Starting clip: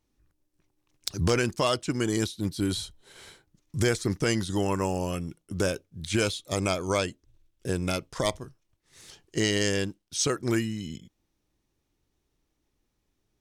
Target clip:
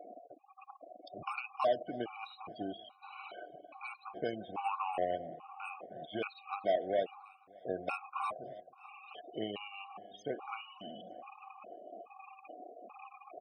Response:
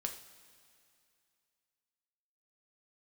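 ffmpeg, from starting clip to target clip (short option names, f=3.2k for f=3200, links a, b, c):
-filter_complex "[0:a]aeval=exprs='val(0)+0.5*0.0447*sgn(val(0))':c=same,acrossover=split=360[a][b];[b]acompressor=threshold=-27dB:ratio=4[c];[a][c]amix=inputs=2:normalize=0,asplit=3[d][e][f];[d]bandpass=f=730:t=q:w=8,volume=0dB[g];[e]bandpass=f=1.09k:t=q:w=8,volume=-6dB[h];[f]bandpass=f=2.44k:t=q:w=8,volume=-9dB[i];[g][h][i]amix=inputs=3:normalize=0,asplit=2[j][k];[1:a]atrim=start_sample=2205,afade=t=out:st=0.21:d=0.01,atrim=end_sample=9702,lowpass=8k[l];[k][l]afir=irnorm=-1:irlink=0,volume=2.5dB[m];[j][m]amix=inputs=2:normalize=0,aeval=exprs='val(0)+0.000708*sin(2*PI*8600*n/s)':c=same,aeval=exprs='0.0944*(cos(1*acos(clip(val(0)/0.0944,-1,1)))-cos(1*PI/2))+0.00668*(cos(7*acos(clip(val(0)/0.0944,-1,1)))-cos(7*PI/2))':c=same,afftfilt=real='re*gte(hypot(re,im),0.00631)':imag='im*gte(hypot(re,im),0.00631)':win_size=1024:overlap=0.75,highpass=97,aecho=1:1:299|598|897|1196:0.0794|0.0461|0.0267|0.0155,afftfilt=real='re*gt(sin(2*PI*1.2*pts/sr)*(1-2*mod(floor(b*sr/1024/740),2)),0)':imag='im*gt(sin(2*PI*1.2*pts/sr)*(1-2*mod(floor(b*sr/1024/740),2)),0)':win_size=1024:overlap=0.75,volume=2.5dB"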